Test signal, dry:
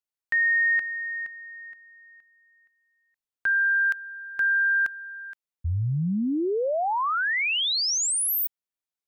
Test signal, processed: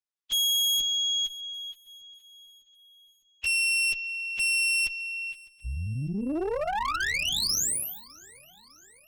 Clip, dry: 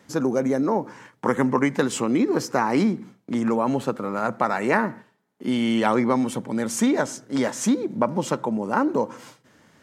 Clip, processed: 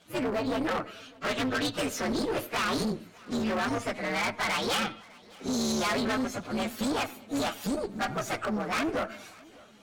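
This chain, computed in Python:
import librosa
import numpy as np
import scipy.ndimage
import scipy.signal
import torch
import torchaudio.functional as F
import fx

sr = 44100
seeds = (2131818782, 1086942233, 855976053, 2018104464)

p1 = fx.partial_stretch(x, sr, pct=129)
p2 = scipy.signal.sosfilt(scipy.signal.butter(2, 7900.0, 'lowpass', fs=sr, output='sos'), p1)
p3 = fx.low_shelf(p2, sr, hz=340.0, db=-10.0)
p4 = fx.over_compress(p3, sr, threshold_db=-30.0, ratio=-1.0)
p5 = p3 + (p4 * 10.0 ** (-3.0 / 20.0))
p6 = fx.tube_stage(p5, sr, drive_db=23.0, bias=0.75)
p7 = fx.clip_asym(p6, sr, top_db=-30.5, bottom_db=-25.0)
p8 = fx.high_shelf(p7, sr, hz=4900.0, db=6.5)
p9 = p8 + fx.echo_feedback(p8, sr, ms=605, feedback_pct=57, wet_db=-24.0, dry=0)
y = p9 * 10.0 ** (1.5 / 20.0)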